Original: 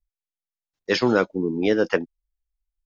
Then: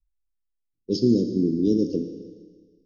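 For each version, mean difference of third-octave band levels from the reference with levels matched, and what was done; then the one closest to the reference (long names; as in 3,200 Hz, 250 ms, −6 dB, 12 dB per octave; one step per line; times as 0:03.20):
10.0 dB: inverse Chebyshev band-stop filter 830–2,300 Hz, stop band 60 dB
low-pass that shuts in the quiet parts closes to 1,100 Hz, open at −19.5 dBFS
low-pass filter 5,800 Hz 12 dB per octave
four-comb reverb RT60 1.6 s, combs from 26 ms, DRR 6.5 dB
level +3.5 dB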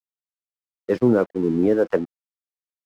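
5.5 dB: drawn EQ curve 560 Hz 0 dB, 1,200 Hz −6 dB, 3,500 Hz −22 dB
in parallel at −2.5 dB: brickwall limiter −15 dBFS, peak gain reduction 7 dB
on the sum: two-band tremolo in antiphase 1.9 Hz, depth 70%, crossover 430 Hz
dead-zone distortion −45.5 dBFS
level +2.5 dB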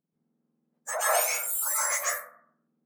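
25.0 dB: frequency axis turned over on the octave scale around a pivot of 1,800 Hz
dynamic equaliser 3,300 Hz, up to −5 dB, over −47 dBFS, Q 3.2
brickwall limiter −23 dBFS, peak gain reduction 10.5 dB
dense smooth reverb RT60 0.63 s, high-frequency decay 0.35×, pre-delay 115 ms, DRR −8 dB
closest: second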